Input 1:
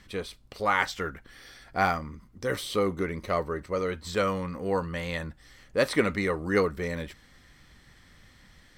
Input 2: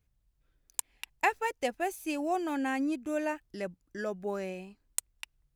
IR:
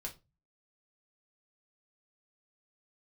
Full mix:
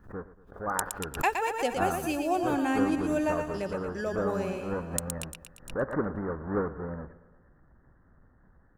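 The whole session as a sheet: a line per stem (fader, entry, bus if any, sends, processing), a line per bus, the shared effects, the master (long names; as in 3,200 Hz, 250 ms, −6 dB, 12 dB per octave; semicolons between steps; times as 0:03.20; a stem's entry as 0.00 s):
−9.5 dB, 0.00 s, no send, echo send −16.5 dB, each half-wave held at its own peak; Butterworth low-pass 1,700 Hz 72 dB per octave
−0.5 dB, 0.00 s, no send, echo send −15 dB, parametric band 2,000 Hz −8.5 dB 0.22 octaves; automatic gain control gain up to 12 dB; automatic ducking −9 dB, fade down 0.20 s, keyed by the first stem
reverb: not used
echo: repeating echo 116 ms, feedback 55%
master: background raised ahead of every attack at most 150 dB per second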